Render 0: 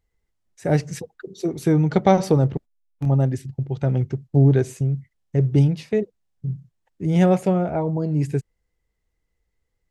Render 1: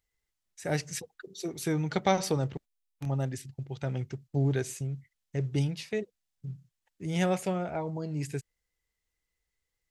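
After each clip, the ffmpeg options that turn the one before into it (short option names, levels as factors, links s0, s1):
-af "tiltshelf=f=1200:g=-7,volume=0.531"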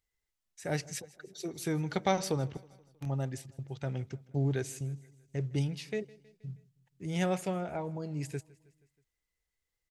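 -af "aecho=1:1:159|318|477|636:0.075|0.042|0.0235|0.0132,volume=0.708"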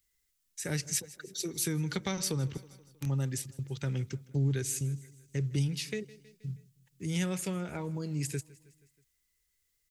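-filter_complex "[0:a]equalizer=f=700:w=2.3:g=-13.5,acrossover=split=150[s0][s1];[s1]acompressor=threshold=0.0126:ratio=3[s2];[s0][s2]amix=inputs=2:normalize=0,highshelf=f=4800:g=10.5,volume=1.58"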